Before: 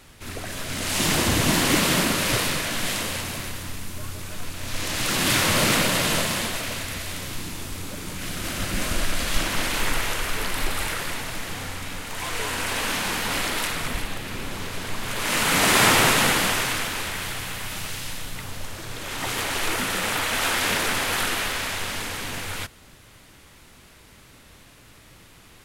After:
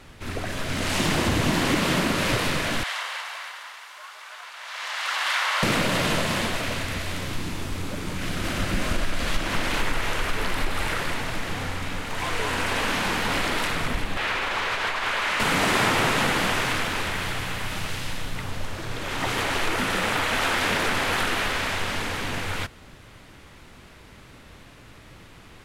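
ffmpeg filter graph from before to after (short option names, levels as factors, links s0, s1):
-filter_complex "[0:a]asettb=1/sr,asplit=3[s0][s1][s2];[s0]atrim=end=2.834[s3];[s1]atrim=start=2.83:end=5.63,asetpts=PTS-STARTPTS,afade=t=in:d=0.004:c=qsin,afade=t=out:st=2.796:d=0.004:c=qsin,highpass=f=840:w=0.5412,highpass=f=840:w=1.3066,highshelf=f=5700:g=-11,bandreject=f=2500:w=19[s4];[s2]atrim=start=5.626[s5];[s3][s4]acrossfade=d=0.004:c1=hsin:c2=qsin[s6];[s6][s5]acrossfade=d=0.004:c1=qsin:c2=hsin,asettb=1/sr,asplit=3[s7][s8][s9];[s7]atrim=end=14.174[s10];[s8]atrim=start=14.17:end=15.4,asetpts=PTS-STARTPTS,afade=t=in:d=0.004:c=qsin,afade=t=out:st=1.226:d=0.004:c=qsin,equalizer=f=200:w=0.55:g=-14,acompressor=threshold=0.0316:ratio=6:attack=3.2:release=140:knee=1:detection=peak,asplit=2[s11][s12];[s12]highpass=f=720:p=1,volume=12.6,asoftclip=type=tanh:threshold=0.2[s13];[s11][s13]amix=inputs=2:normalize=0,lowpass=f=2100:p=1,volume=0.501[s14];[s9]atrim=start=15.396[s15];[s10][s14]acrossfade=d=0.004:c1=hsin:c2=qsin[s16];[s16][s15]acrossfade=d=0.004:c1=qsin:c2=hsin,lowpass=f=2900:p=1,acompressor=threshold=0.0631:ratio=3,volume=1.58"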